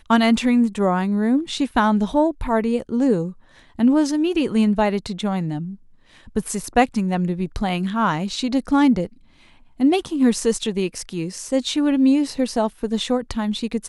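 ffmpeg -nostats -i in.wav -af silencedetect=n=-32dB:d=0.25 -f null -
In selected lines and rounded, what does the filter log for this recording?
silence_start: 3.31
silence_end: 3.79 | silence_duration: 0.48
silence_start: 5.74
silence_end: 6.28 | silence_duration: 0.54
silence_start: 9.07
silence_end: 9.80 | silence_duration: 0.73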